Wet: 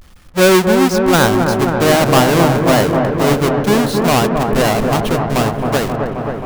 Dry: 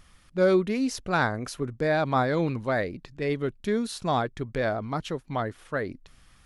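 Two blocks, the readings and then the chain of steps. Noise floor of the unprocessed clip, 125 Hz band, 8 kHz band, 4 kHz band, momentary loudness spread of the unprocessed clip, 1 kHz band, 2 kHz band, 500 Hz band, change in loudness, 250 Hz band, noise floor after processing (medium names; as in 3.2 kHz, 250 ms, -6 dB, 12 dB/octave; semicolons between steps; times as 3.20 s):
-57 dBFS, +15.0 dB, +20.0 dB, +18.5 dB, 9 LU, +14.0 dB, +12.5 dB, +13.5 dB, +14.0 dB, +15.0 dB, -37 dBFS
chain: square wave that keeps the level; feedback echo behind a low-pass 266 ms, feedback 79%, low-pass 1.4 kHz, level -4 dB; trim +7.5 dB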